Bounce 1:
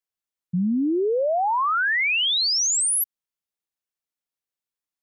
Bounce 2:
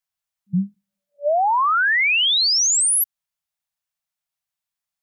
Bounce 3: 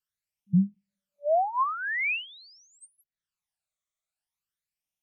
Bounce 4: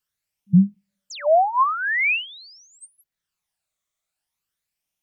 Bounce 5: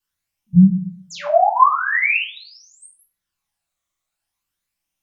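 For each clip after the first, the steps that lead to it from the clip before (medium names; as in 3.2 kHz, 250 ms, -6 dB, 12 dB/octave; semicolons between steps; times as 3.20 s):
FFT band-reject 200–580 Hz; trim +4 dB
phase shifter stages 12, 0.45 Hz, lowest notch 270–1500 Hz; low-pass that closes with the level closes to 650 Hz, closed at -16.5 dBFS; trim -1.5 dB
painted sound fall, 1.10–1.30 s, 510–7800 Hz -43 dBFS; trim +7.5 dB
reverberation RT60 0.50 s, pre-delay 3 ms, DRR -6.5 dB; trim -4 dB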